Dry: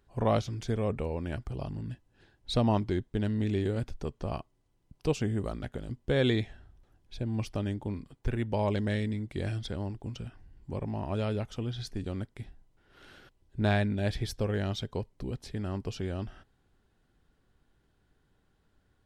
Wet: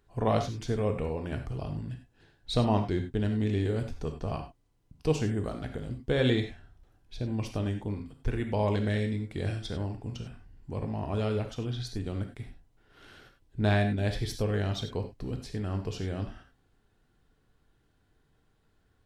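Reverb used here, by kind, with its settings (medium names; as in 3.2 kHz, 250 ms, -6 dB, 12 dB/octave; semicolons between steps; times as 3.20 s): gated-style reverb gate 120 ms flat, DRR 5 dB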